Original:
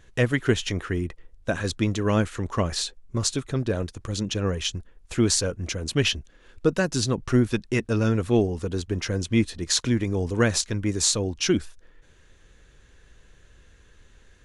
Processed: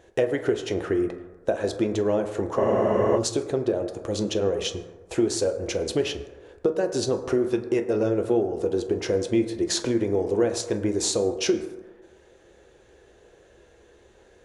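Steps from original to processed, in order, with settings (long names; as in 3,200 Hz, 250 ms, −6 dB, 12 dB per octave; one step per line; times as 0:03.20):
high-pass filter 110 Hz 6 dB per octave
flat-topped bell 520 Hz +12.5 dB
downward compressor 6 to 1, threshold −19 dBFS, peak gain reduction 14 dB
on a send at −5.5 dB: convolution reverb RT60 1.3 s, pre-delay 7 ms
on the sum: frozen spectrum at 0:02.60, 0.57 s
level −2 dB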